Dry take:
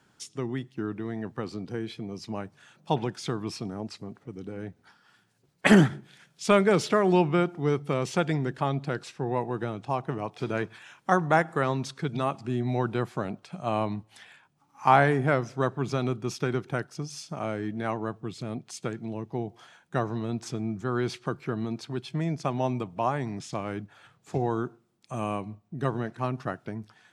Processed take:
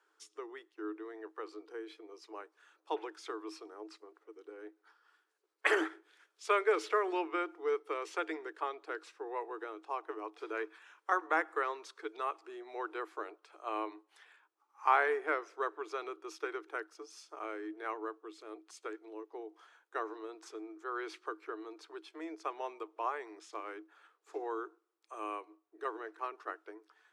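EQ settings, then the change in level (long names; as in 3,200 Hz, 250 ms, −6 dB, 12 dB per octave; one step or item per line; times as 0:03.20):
dynamic equaliser 2,200 Hz, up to +5 dB, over −44 dBFS, Q 1.7
Chebyshev high-pass with heavy ripple 310 Hz, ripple 9 dB
−4.5 dB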